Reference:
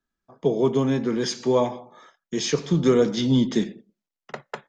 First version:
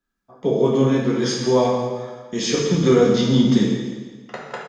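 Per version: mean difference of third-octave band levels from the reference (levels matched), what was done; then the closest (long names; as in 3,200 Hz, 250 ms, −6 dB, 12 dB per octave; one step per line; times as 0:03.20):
5.5 dB: on a send: repeating echo 168 ms, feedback 46%, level −12.5 dB
on the sum: dense smooth reverb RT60 1.2 s, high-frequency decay 0.85×, DRR −3 dB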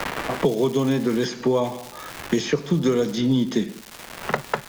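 8.0 dB: surface crackle 550 per second −35 dBFS
multiband upward and downward compressor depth 100%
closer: first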